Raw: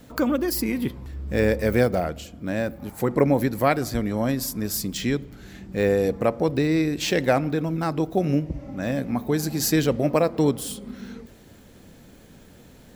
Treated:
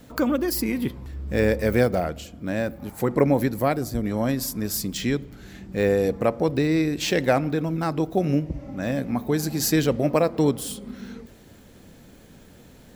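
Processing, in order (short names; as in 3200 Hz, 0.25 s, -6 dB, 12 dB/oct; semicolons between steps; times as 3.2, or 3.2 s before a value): 3.51–4.03 bell 2100 Hz -3 dB -> -11.5 dB 2.7 oct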